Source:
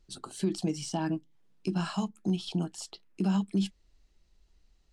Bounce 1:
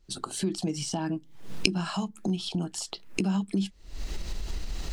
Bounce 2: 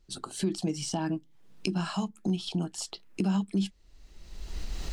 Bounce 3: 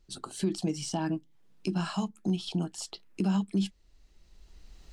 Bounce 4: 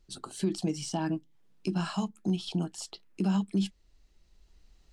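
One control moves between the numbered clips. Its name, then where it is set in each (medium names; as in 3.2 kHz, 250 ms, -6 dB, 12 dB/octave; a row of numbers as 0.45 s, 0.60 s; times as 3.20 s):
recorder AGC, rising by: 88 dB/s, 32 dB/s, 13 dB/s, 5.2 dB/s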